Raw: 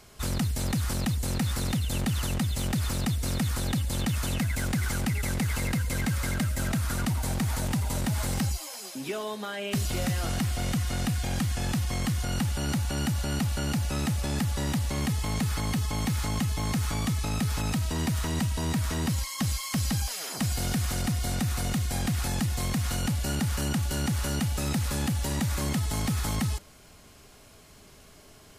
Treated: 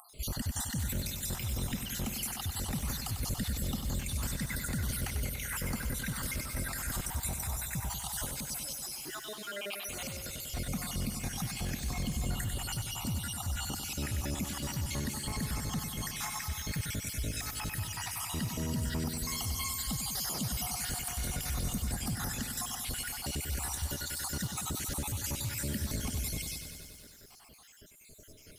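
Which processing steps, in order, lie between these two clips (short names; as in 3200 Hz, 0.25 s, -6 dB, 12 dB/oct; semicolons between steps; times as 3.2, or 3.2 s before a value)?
random spectral dropouts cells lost 63%; limiter -28.5 dBFS, peak gain reduction 9.5 dB; 8.25–10.49 low shelf 330 Hz -12 dB; upward compressor, threshold -57 dBFS; high shelf 9000 Hz +9.5 dB; lo-fi delay 96 ms, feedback 80%, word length 10-bit, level -8 dB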